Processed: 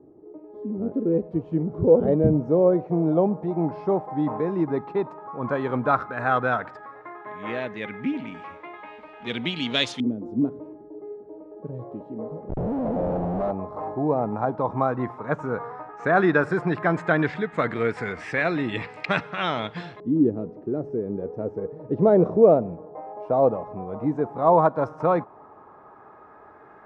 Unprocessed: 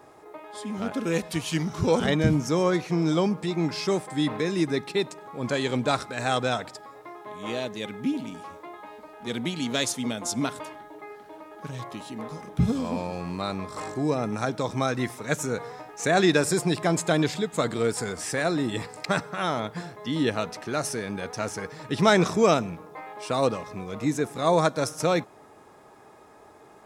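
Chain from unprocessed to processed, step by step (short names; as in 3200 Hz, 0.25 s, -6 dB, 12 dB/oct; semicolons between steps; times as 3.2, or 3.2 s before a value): 12.49–13.51 Schmitt trigger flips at -38 dBFS; LFO low-pass saw up 0.1 Hz 320–3300 Hz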